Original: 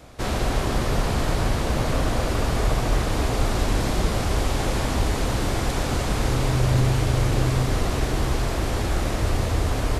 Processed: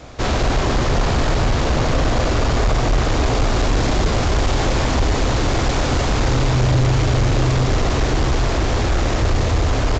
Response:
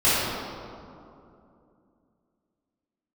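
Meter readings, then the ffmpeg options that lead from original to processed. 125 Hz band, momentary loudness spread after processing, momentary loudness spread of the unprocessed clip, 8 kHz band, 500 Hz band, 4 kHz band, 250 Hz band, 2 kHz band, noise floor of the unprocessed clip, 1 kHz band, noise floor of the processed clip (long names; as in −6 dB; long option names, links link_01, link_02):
+5.0 dB, 2 LU, 3 LU, +3.5 dB, +5.5 dB, +5.5 dB, +5.0 dB, +5.5 dB, −26 dBFS, +5.5 dB, −19 dBFS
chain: -af "aresample=16000,asoftclip=type=tanh:threshold=-18.5dB,aresample=44100,equalizer=frequency=190:width_type=o:width=0.24:gain=-5,volume=8dB"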